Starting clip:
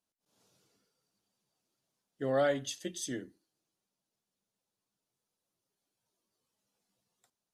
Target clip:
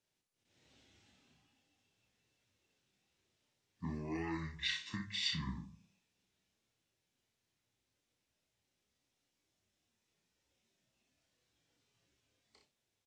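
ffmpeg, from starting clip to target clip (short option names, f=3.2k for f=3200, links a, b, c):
-filter_complex "[0:a]acrossover=split=150|3000[a][b][c];[b]acompressor=threshold=-44dB:ratio=6[d];[a][d][c]amix=inputs=3:normalize=0,aecho=1:1:18|35:0.531|0.398,asetrate=25442,aresample=44100,volume=1.5dB"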